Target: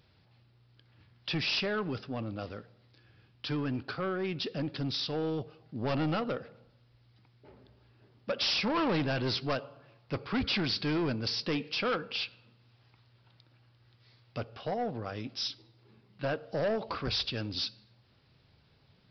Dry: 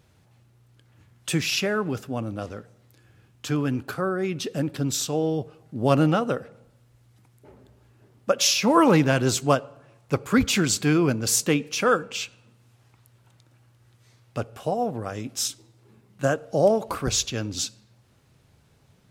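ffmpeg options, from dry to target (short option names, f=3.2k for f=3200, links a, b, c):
-af "aemphasis=mode=production:type=75kf,aresample=11025,asoftclip=type=tanh:threshold=-20.5dB,aresample=44100,volume=-5.5dB"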